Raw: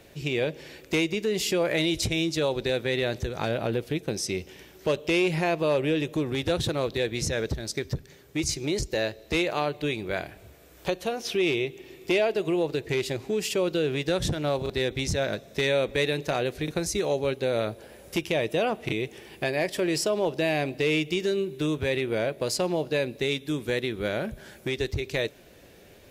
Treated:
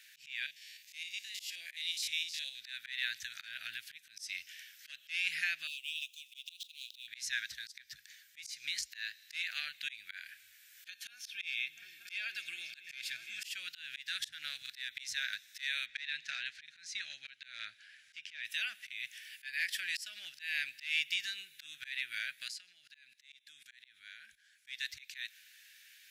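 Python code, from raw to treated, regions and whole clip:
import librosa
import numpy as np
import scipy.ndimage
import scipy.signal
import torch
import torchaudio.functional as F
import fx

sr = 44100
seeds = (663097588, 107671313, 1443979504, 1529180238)

y = fx.chain(x, sr, fx.spec_steps(hold_ms=50),
    fx.fixed_phaser(hz=550.0, stages=4), at=(0.46, 2.61))
y = fx.chain(y, sr, fx.median_filter(points=5),
    fx.steep_highpass(hz=2600.0, slope=72),
    fx.peak_eq(hz=4400.0, db=-5.5, octaves=0.3), at=(5.67, 7.08))
y = fx.chain(y, sr, fx.notch_comb(f0_hz=970.0),
    fx.echo_opening(ms=234, hz=200, octaves=1, feedback_pct=70, wet_db=-3), at=(10.88, 13.44))
y = fx.chain(y, sr, fx.overload_stage(gain_db=17.0),
    fx.air_absorb(metres=110.0), at=(15.86, 18.45))
y = fx.chain(y, sr, fx.lowpass(hz=10000.0, slope=12),
    fx.level_steps(step_db=21), at=(22.48, 24.67))
y = scipy.signal.sosfilt(scipy.signal.ellip(4, 1.0, 40, 1600.0, 'highpass', fs=sr, output='sos'), y)
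y = fx.dynamic_eq(y, sr, hz=7400.0, q=1.1, threshold_db=-45.0, ratio=4.0, max_db=-4)
y = fx.auto_swell(y, sr, attack_ms=197.0)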